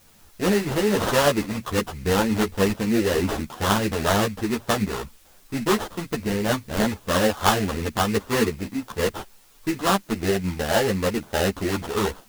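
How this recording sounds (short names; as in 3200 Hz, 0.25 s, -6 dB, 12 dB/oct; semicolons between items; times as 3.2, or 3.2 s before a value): aliases and images of a low sample rate 2300 Hz, jitter 20%; tremolo saw up 3.3 Hz, depth 35%; a quantiser's noise floor 10-bit, dither triangular; a shimmering, thickened sound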